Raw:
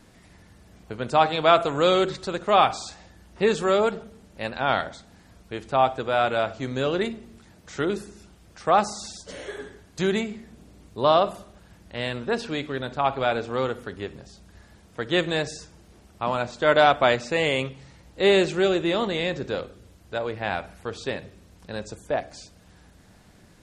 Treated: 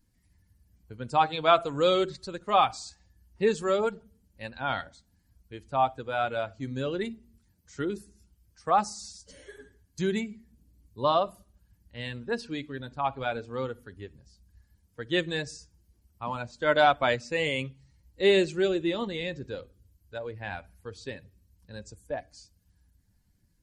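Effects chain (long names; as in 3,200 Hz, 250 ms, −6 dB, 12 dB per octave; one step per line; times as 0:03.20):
spectral dynamics exaggerated over time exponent 1.5
notch filter 630 Hz, Q 18
level −1.5 dB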